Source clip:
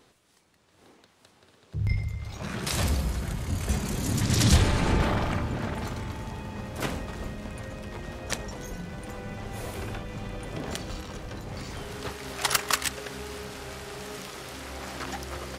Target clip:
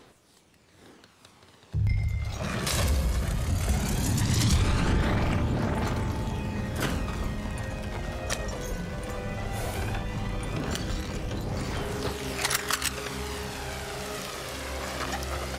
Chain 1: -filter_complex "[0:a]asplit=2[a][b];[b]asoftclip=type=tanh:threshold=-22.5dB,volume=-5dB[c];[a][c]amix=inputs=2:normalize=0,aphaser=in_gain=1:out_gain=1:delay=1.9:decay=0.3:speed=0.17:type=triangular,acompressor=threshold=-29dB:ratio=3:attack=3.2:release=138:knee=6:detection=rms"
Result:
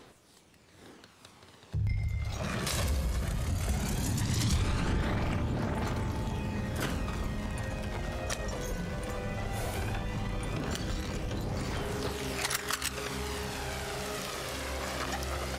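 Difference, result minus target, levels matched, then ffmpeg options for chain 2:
compressor: peak gain reduction +5.5 dB
-filter_complex "[0:a]asplit=2[a][b];[b]asoftclip=type=tanh:threshold=-22.5dB,volume=-5dB[c];[a][c]amix=inputs=2:normalize=0,aphaser=in_gain=1:out_gain=1:delay=1.9:decay=0.3:speed=0.17:type=triangular,acompressor=threshold=-21dB:ratio=3:attack=3.2:release=138:knee=6:detection=rms"

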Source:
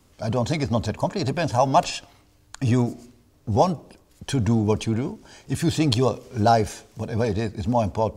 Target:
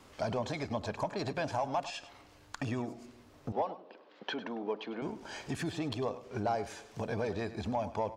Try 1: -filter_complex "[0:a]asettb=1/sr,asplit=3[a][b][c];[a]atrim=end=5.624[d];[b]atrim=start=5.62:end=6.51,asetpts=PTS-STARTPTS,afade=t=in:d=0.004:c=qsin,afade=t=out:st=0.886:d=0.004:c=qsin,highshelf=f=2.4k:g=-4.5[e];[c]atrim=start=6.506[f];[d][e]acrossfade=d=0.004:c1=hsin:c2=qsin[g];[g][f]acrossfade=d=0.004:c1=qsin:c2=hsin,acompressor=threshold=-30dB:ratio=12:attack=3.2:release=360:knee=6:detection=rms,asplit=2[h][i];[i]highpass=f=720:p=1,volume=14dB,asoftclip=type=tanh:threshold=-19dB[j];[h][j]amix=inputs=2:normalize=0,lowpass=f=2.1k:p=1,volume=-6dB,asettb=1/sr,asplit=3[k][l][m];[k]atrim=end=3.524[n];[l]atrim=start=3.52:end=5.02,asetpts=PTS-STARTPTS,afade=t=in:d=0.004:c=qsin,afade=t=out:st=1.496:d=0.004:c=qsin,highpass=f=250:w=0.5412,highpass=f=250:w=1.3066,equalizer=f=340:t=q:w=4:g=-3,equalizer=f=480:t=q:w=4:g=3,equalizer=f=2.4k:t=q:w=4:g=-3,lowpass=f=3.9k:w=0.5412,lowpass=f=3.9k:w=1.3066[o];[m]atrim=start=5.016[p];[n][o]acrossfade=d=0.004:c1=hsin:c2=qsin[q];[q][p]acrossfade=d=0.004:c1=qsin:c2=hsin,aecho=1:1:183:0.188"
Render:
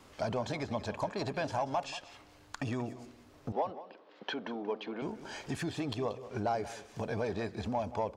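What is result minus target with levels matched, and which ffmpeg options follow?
echo 82 ms late
-filter_complex "[0:a]asettb=1/sr,asplit=3[a][b][c];[a]atrim=end=5.624[d];[b]atrim=start=5.62:end=6.51,asetpts=PTS-STARTPTS,afade=t=in:d=0.004:c=qsin,afade=t=out:st=0.886:d=0.004:c=qsin,highshelf=f=2.4k:g=-4.5[e];[c]atrim=start=6.506[f];[d][e]acrossfade=d=0.004:c1=hsin:c2=qsin[g];[g][f]acrossfade=d=0.004:c1=qsin:c2=hsin,acompressor=threshold=-30dB:ratio=12:attack=3.2:release=360:knee=6:detection=rms,asplit=2[h][i];[i]highpass=f=720:p=1,volume=14dB,asoftclip=type=tanh:threshold=-19dB[j];[h][j]amix=inputs=2:normalize=0,lowpass=f=2.1k:p=1,volume=-6dB,asettb=1/sr,asplit=3[k][l][m];[k]atrim=end=3.524[n];[l]atrim=start=3.52:end=5.02,asetpts=PTS-STARTPTS,afade=t=in:d=0.004:c=qsin,afade=t=out:st=1.496:d=0.004:c=qsin,highpass=f=250:w=0.5412,highpass=f=250:w=1.3066,equalizer=f=340:t=q:w=4:g=-3,equalizer=f=480:t=q:w=4:g=3,equalizer=f=2.4k:t=q:w=4:g=-3,lowpass=f=3.9k:w=0.5412,lowpass=f=3.9k:w=1.3066[o];[m]atrim=start=5.016[p];[n][o]acrossfade=d=0.004:c1=hsin:c2=qsin[q];[q][p]acrossfade=d=0.004:c1=qsin:c2=hsin,aecho=1:1:101:0.188"

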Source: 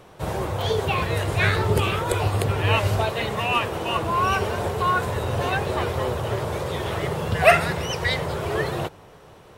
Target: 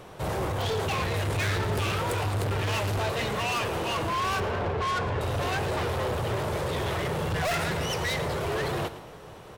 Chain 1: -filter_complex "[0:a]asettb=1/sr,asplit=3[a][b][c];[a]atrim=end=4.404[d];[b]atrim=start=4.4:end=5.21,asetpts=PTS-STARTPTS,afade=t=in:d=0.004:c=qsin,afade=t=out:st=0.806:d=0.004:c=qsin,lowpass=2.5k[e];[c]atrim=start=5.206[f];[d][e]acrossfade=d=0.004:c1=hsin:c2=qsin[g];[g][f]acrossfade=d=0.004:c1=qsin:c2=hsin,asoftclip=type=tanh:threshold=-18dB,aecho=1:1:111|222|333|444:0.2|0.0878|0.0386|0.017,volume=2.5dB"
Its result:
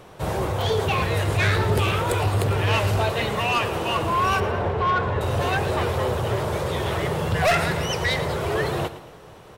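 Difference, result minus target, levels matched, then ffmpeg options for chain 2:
soft clip: distortion -6 dB
-filter_complex "[0:a]asettb=1/sr,asplit=3[a][b][c];[a]atrim=end=4.404[d];[b]atrim=start=4.4:end=5.21,asetpts=PTS-STARTPTS,afade=t=in:d=0.004:c=qsin,afade=t=out:st=0.806:d=0.004:c=qsin,lowpass=2.5k[e];[c]atrim=start=5.206[f];[d][e]acrossfade=d=0.004:c1=hsin:c2=qsin[g];[g][f]acrossfade=d=0.004:c1=qsin:c2=hsin,asoftclip=type=tanh:threshold=-28.5dB,aecho=1:1:111|222|333|444:0.2|0.0878|0.0386|0.017,volume=2.5dB"

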